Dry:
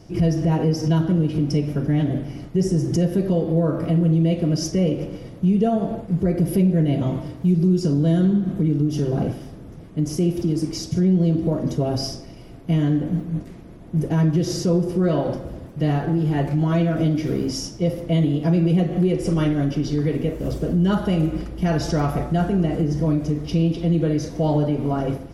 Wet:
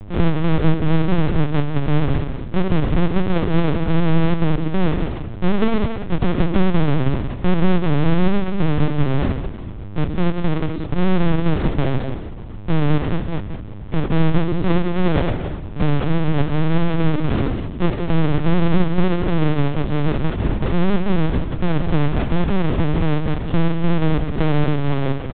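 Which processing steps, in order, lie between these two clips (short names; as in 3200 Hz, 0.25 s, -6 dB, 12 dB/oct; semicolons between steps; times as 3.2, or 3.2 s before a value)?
half-waves squared off; buzz 100 Hz, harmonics 12, -37 dBFS -8 dB/oct; low shelf 450 Hz +6.5 dB; echo 0.181 s -9 dB; LPC vocoder at 8 kHz pitch kept; gain -4.5 dB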